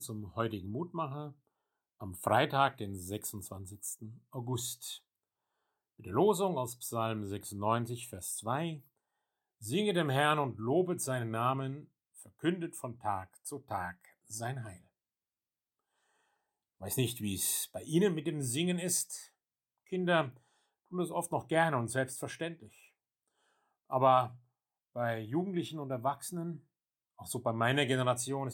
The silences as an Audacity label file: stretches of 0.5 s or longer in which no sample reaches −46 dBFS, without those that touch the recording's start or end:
1.320000	2.010000	silence
4.970000	6.000000	silence
8.790000	9.620000	silence
14.760000	16.820000	silence
19.250000	19.920000	silence
20.300000	20.920000	silence
22.670000	23.900000	silence
24.350000	24.960000	silence
26.560000	27.190000	silence